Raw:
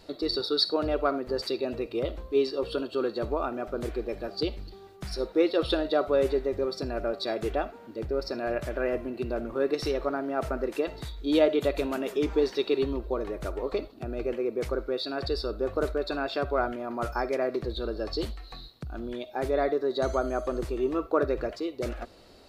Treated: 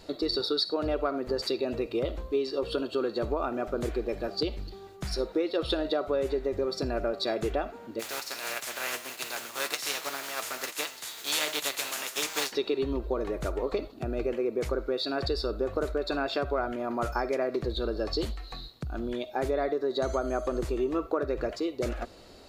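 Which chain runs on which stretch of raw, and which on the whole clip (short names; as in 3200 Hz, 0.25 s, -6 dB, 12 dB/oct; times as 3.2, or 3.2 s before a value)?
7.99–12.51 spectral contrast lowered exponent 0.4 + HPF 1100 Hz 6 dB/oct + flange 1.3 Hz, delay 6.2 ms, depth 3.1 ms, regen +47%
whole clip: bell 6900 Hz +4.5 dB 0.25 oct; compressor, threshold -27 dBFS; gain +2.5 dB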